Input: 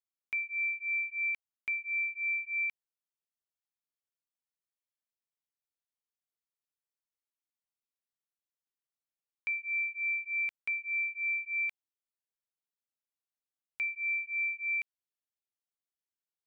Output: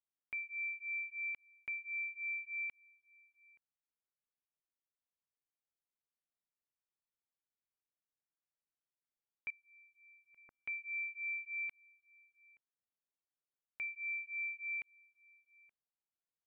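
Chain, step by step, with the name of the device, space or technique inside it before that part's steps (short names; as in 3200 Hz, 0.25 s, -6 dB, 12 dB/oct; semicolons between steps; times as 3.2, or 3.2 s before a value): 9.5–10.62 steep low-pass 1500 Hz 36 dB/oct; shout across a valley (air absorption 450 m; outdoor echo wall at 150 m, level -21 dB); gain -2 dB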